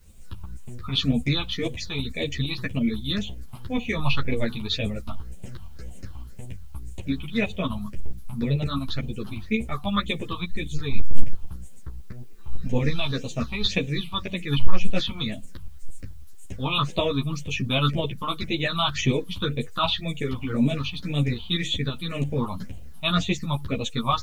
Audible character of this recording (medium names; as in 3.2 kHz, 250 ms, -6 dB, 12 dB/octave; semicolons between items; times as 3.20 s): phasing stages 6, 1.9 Hz, lowest notch 460–1400 Hz; tremolo saw up 9 Hz, depth 50%; a quantiser's noise floor 12-bit, dither triangular; a shimmering, thickened sound